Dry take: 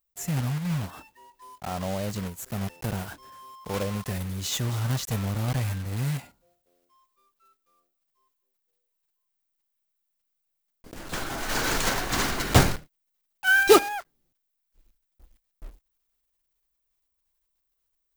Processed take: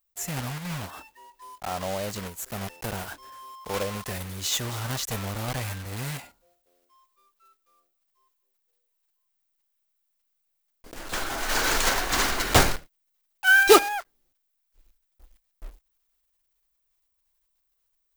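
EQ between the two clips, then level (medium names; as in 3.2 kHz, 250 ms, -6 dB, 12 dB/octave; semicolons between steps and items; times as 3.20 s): peaking EQ 140 Hz -10 dB 2.1 oct; +3.0 dB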